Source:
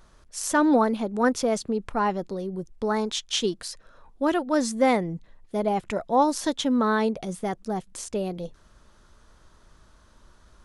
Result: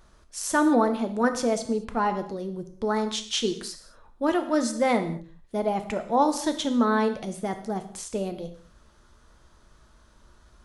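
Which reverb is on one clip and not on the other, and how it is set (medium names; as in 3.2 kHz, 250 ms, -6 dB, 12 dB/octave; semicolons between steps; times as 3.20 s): gated-style reverb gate 250 ms falling, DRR 7.5 dB; trim -1.5 dB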